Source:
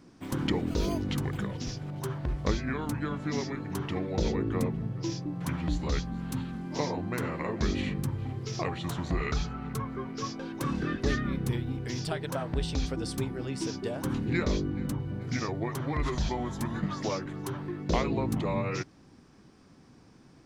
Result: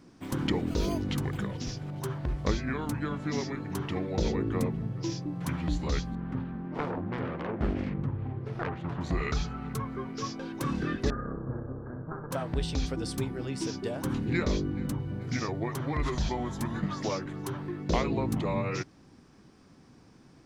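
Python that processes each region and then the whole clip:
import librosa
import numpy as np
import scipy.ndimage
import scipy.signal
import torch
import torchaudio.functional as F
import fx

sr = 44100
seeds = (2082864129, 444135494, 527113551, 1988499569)

y = fx.chain(x, sr, fx.self_delay(depth_ms=0.83),
    fx.lowpass(hz=1700.0, slope=12), at=(6.15, 9.01))
y = fx.chain(y, sr, fx.lower_of_two(delay_ms=0.87),
    fx.cheby_ripple(hz=1700.0, ripple_db=6),
    fx.room_flutter(wall_m=10.8, rt60_s=0.44), at=(11.1, 12.31))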